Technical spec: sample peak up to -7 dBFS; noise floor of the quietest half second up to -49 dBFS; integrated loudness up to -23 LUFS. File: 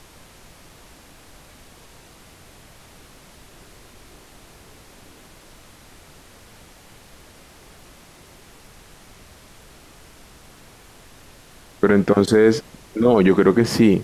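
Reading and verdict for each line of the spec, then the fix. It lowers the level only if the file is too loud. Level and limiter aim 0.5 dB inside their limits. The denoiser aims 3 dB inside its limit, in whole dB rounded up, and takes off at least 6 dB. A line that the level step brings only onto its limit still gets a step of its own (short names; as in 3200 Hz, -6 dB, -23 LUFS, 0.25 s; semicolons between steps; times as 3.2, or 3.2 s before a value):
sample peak -4.0 dBFS: fail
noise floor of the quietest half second -47 dBFS: fail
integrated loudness -17.0 LUFS: fail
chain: gain -6.5 dB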